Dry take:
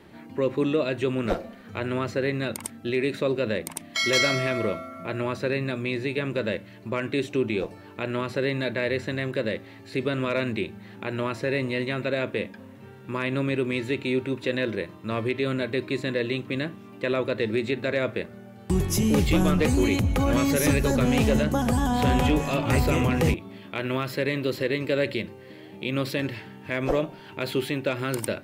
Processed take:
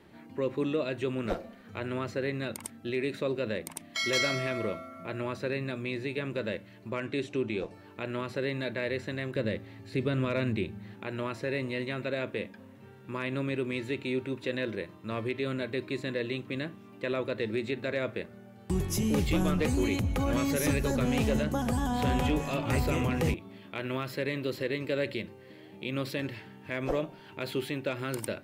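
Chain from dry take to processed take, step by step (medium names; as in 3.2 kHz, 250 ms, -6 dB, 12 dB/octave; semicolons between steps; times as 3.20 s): 7.00–7.74 s: low-pass 9.7 kHz 12 dB/octave; 9.36–10.94 s: bass shelf 180 Hz +11.5 dB; trim -6 dB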